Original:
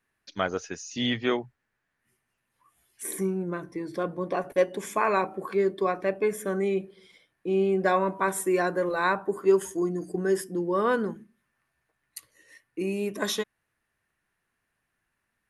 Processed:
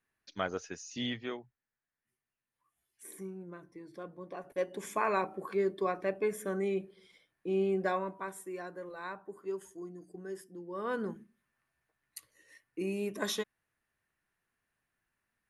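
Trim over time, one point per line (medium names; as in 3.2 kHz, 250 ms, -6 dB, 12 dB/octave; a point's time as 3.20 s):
0.97 s -6.5 dB
1.38 s -15 dB
4.36 s -15 dB
4.85 s -6 dB
7.75 s -6 dB
8.42 s -17 dB
10.65 s -17 dB
11.10 s -5.5 dB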